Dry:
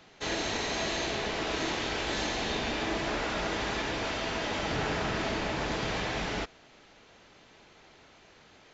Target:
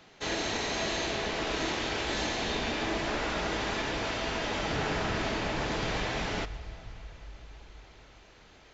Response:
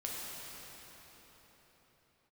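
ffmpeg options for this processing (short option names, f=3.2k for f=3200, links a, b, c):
-filter_complex "[0:a]asplit=2[a][b];[b]asubboost=boost=12:cutoff=70[c];[1:a]atrim=start_sample=2205,adelay=125[d];[c][d]afir=irnorm=-1:irlink=0,volume=-17.5dB[e];[a][e]amix=inputs=2:normalize=0"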